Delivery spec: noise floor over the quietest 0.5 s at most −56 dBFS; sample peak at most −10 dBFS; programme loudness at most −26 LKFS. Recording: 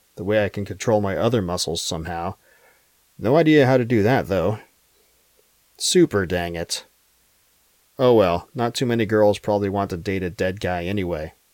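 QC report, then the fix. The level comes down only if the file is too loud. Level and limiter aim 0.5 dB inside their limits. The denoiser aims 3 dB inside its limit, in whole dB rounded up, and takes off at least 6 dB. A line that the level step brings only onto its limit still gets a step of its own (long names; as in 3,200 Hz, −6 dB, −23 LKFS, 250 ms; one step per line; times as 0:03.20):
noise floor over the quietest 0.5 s −61 dBFS: in spec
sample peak −5.5 dBFS: out of spec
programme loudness −21.0 LKFS: out of spec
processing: level −5.5 dB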